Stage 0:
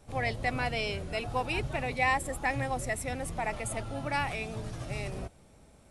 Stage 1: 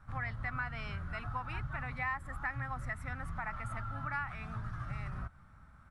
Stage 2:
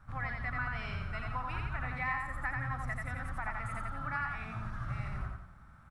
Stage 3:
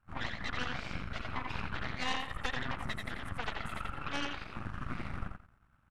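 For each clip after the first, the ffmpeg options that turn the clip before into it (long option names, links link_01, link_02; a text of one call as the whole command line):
ffmpeg -i in.wav -af "firequalizer=gain_entry='entry(110,0);entry(420,-21);entry(1300,10);entry(2500,-12);entry(7200,-21)':delay=0.05:min_phase=1,acompressor=threshold=-39dB:ratio=2.5,volume=2dB" out.wav
ffmpeg -i in.wav -af "aecho=1:1:87|174|261|348|435:0.708|0.29|0.119|0.0488|0.02" out.wav
ffmpeg -i in.wav -af "aeval=exprs='0.0841*(cos(1*acos(clip(val(0)/0.0841,-1,1)))-cos(1*PI/2))+0.0211*(cos(3*acos(clip(val(0)/0.0841,-1,1)))-cos(3*PI/2))+0.0237*(cos(4*acos(clip(val(0)/0.0841,-1,1)))-cos(4*PI/2))+0.00596*(cos(8*acos(clip(val(0)/0.0841,-1,1)))-cos(8*PI/2))':channel_layout=same" out.wav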